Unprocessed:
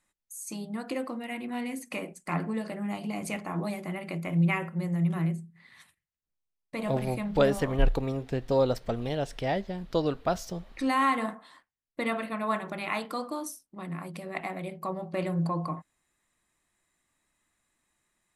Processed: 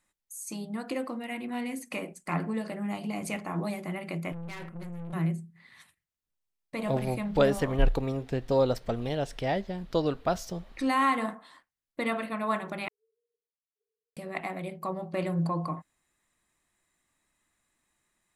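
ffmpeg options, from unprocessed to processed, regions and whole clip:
ffmpeg -i in.wav -filter_complex "[0:a]asettb=1/sr,asplit=3[link_01][link_02][link_03];[link_01]atrim=end=4.324[link_04];[link_02]atrim=start=4.32:end=5.13,asetpts=PTS-STARTPTS,afade=type=in:duration=0.004:curve=qsin,afade=type=out:start_time=0.806:duration=0.004:curve=qsin,equalizer=frequency=130:width_type=o:width=0.25:gain=6.5,acompressor=threshold=-27dB:ratio=12:attack=3.2:release=140:knee=1:detection=peak,aeval=exprs='(tanh(79.4*val(0)+0.65)-tanh(0.65))/79.4':channel_layout=same[link_05];[link_03]atrim=start=5.126[link_06];[link_04][link_05]acrossfade=duration=0.004:curve1=hsin:curve2=qsin[link_07];[link_07][link_06]acrossfade=duration=0.004:curve1=qsin:curve2=hsin,asettb=1/sr,asplit=3[link_08][link_09][link_10];[link_08]atrim=end=12.884[link_11];[link_09]atrim=start=12.88:end=14.17,asetpts=PTS-STARTPTS,afade=type=in:duration=0.004:curve=qsin,afade=type=out:start_time=1.286:duration=0.004:curve=qsin,aderivative,acompressor=threshold=-56dB:ratio=3:attack=3.2:release=140:knee=1:detection=peak,asuperpass=centerf=440:order=20:qfactor=6.7[link_12];[link_10]atrim=start=14.166[link_13];[link_11][link_12]acrossfade=duration=0.004:curve1=hsin:curve2=qsin[link_14];[link_14][link_13]acrossfade=duration=0.004:curve1=qsin:curve2=hsin" out.wav

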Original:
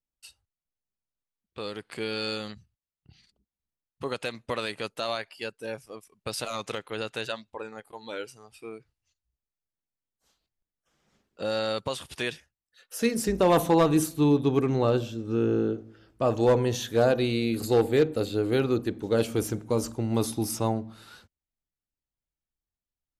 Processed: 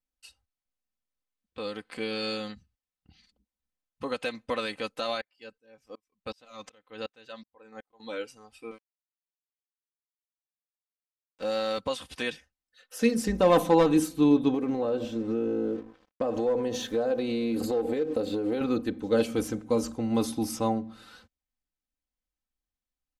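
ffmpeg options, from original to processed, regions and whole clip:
ffmpeg -i in.wav -filter_complex "[0:a]asettb=1/sr,asplit=3[link_01][link_02][link_03];[link_01]atrim=end=5.214[link_04];[link_02]atrim=start=5.21:end=8,asetpts=PTS-STARTPTS,afade=type=in:duration=0.004:curve=qsin,afade=type=out:start_time=2.786:duration=0.004:curve=qsin,equalizer=frequency=10000:width=3.9:gain=-14.5,aeval=exprs='val(0)*pow(10,-33*if(lt(mod(-2.7*n/s,1),2*abs(-2.7)/1000),1-mod(-2.7*n/s,1)/(2*abs(-2.7)/1000),(mod(-2.7*n/s,1)-2*abs(-2.7)/1000)/(1-2*abs(-2.7)/1000))/20)':channel_layout=same[link_05];[link_03]atrim=start=7.996[link_06];[link_04][link_05]acrossfade=duration=0.004:curve1=hsin:curve2=qsin[link_07];[link_07][link_06]acrossfade=duration=0.004:curve1=qsin:curve2=hsin,asettb=1/sr,asplit=3[link_08][link_09][link_10];[link_08]atrim=end=8.714[link_11];[link_09]atrim=start=8.71:end=11.78,asetpts=PTS-STARTPTS,afade=type=in:duration=0.004:curve=qsin,afade=type=out:start_time=3.066:duration=0.004:curve=qsin,highpass=frequency=210:poles=1,aeval=exprs='sgn(val(0))*max(abs(val(0))-0.00668,0)':channel_layout=same[link_12];[link_10]atrim=start=11.776[link_13];[link_11][link_12]acrossfade=duration=0.004:curve1=hsin:curve2=qsin[link_14];[link_14][link_13]acrossfade=duration=0.004:curve1=qsin:curve2=hsin,asettb=1/sr,asplit=3[link_15][link_16][link_17];[link_15]atrim=end=14.544[link_18];[link_16]atrim=start=14.54:end=18.61,asetpts=PTS-STARTPTS,afade=type=in:duration=0.004:curve=qsin,afade=type=out:start_time=4.066:duration=0.004:curve=qsin,equalizer=frequency=470:width=0.67:gain=8,aeval=exprs='sgn(val(0))*max(abs(val(0))-0.00355,0)':channel_layout=same,acompressor=threshold=-23dB:ratio=12:attack=3.2:release=140:knee=1:detection=peak[link_19];[link_17]atrim=start=18.606[link_20];[link_18][link_19]acrossfade=duration=0.004:curve1=hsin:curve2=qsin[link_21];[link_21][link_20]acrossfade=duration=0.004:curve1=qsin:curve2=hsin,highshelf=frequency=9000:gain=-9,aecho=1:1:3.9:0.64,volume=-1.5dB" out.wav

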